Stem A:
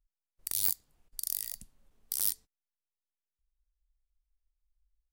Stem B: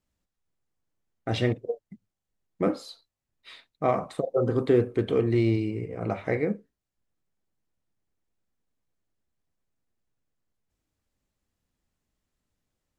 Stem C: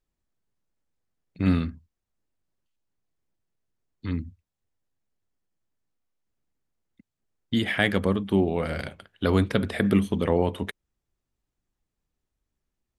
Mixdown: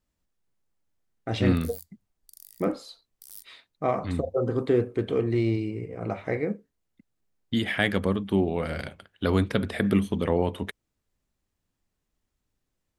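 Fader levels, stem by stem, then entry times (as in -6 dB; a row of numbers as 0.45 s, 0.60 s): -15.5 dB, -1.5 dB, -1.5 dB; 1.10 s, 0.00 s, 0.00 s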